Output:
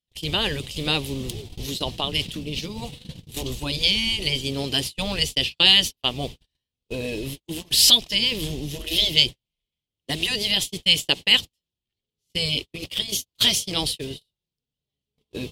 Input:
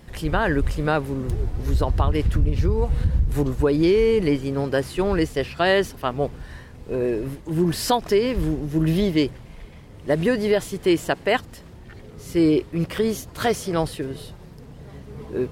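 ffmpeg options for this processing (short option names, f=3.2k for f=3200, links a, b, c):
-af "afftfilt=real='re*lt(hypot(re,im),0.562)':imag='im*lt(hypot(re,im),0.562)':win_size=1024:overlap=0.75,agate=range=-46dB:threshold=-30dB:ratio=16:detection=peak,highshelf=f=2.2k:t=q:w=3:g=13,volume=-2.5dB"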